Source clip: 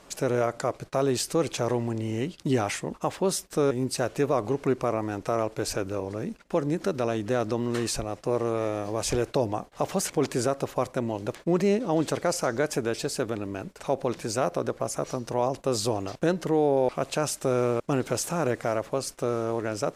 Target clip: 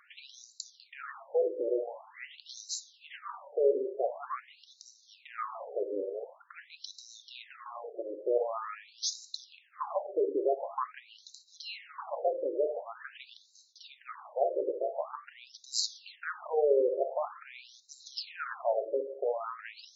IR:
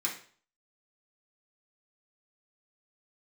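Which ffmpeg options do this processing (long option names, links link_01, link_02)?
-filter_complex "[0:a]asplit=2[link_01][link_02];[1:a]atrim=start_sample=2205,asetrate=23814,aresample=44100[link_03];[link_02][link_03]afir=irnorm=-1:irlink=0,volume=-12.5dB[link_04];[link_01][link_04]amix=inputs=2:normalize=0,afftfilt=real='re*between(b*sr/1024,420*pow(5400/420,0.5+0.5*sin(2*PI*0.46*pts/sr))/1.41,420*pow(5400/420,0.5+0.5*sin(2*PI*0.46*pts/sr))*1.41)':imag='im*between(b*sr/1024,420*pow(5400/420,0.5+0.5*sin(2*PI*0.46*pts/sr))/1.41,420*pow(5400/420,0.5+0.5*sin(2*PI*0.46*pts/sr))*1.41)':win_size=1024:overlap=0.75,volume=-2dB"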